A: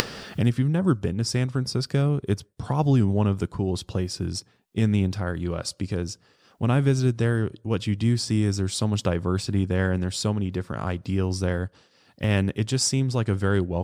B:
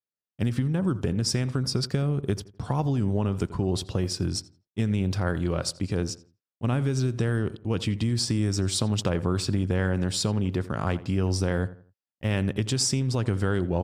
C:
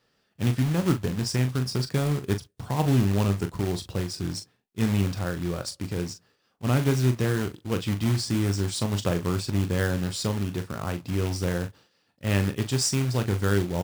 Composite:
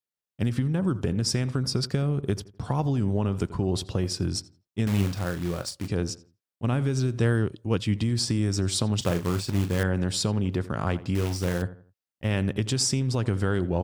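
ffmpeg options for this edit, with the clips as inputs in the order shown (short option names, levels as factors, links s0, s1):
-filter_complex "[2:a]asplit=3[s0][s1][s2];[1:a]asplit=5[s3][s4][s5][s6][s7];[s3]atrim=end=4.872[s8];[s0]atrim=start=4.868:end=5.882[s9];[s4]atrim=start=5.878:end=7.192[s10];[0:a]atrim=start=7.188:end=7.952[s11];[s5]atrim=start=7.948:end=9.012[s12];[s1]atrim=start=9.008:end=9.832[s13];[s6]atrim=start=9.828:end=11.152[s14];[s2]atrim=start=11.148:end=11.622[s15];[s7]atrim=start=11.618[s16];[s8][s9]acrossfade=d=0.004:c1=hsin:c2=hsin[s17];[s17][s10]acrossfade=d=0.004:c1=hsin:c2=hsin[s18];[s18][s11]acrossfade=d=0.004:c1=hsin:c2=hsin[s19];[s19][s12]acrossfade=d=0.004:c1=hsin:c2=hsin[s20];[s20][s13]acrossfade=d=0.004:c1=hsin:c2=hsin[s21];[s21][s14]acrossfade=d=0.004:c1=hsin:c2=hsin[s22];[s22][s15]acrossfade=d=0.004:c1=hsin:c2=hsin[s23];[s23][s16]acrossfade=d=0.004:c1=hsin:c2=hsin"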